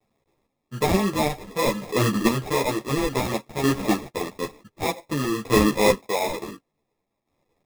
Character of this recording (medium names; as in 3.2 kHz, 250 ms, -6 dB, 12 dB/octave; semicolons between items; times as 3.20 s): a quantiser's noise floor 12-bit, dither none; chopped level 0.55 Hz, depth 60%, duty 25%; aliases and images of a low sample rate 1.5 kHz, jitter 0%; a shimmering, thickened sound